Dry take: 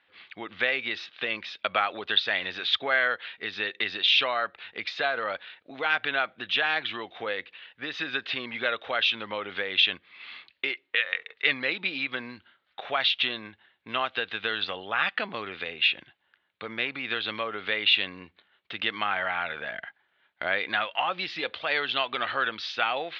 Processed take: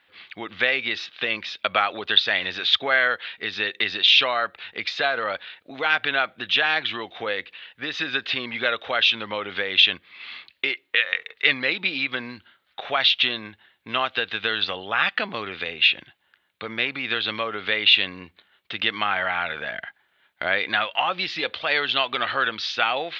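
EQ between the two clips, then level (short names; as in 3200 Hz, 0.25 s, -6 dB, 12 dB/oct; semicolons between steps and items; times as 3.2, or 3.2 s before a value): low shelf 150 Hz +4 dB; high shelf 5600 Hz +9 dB; +3.5 dB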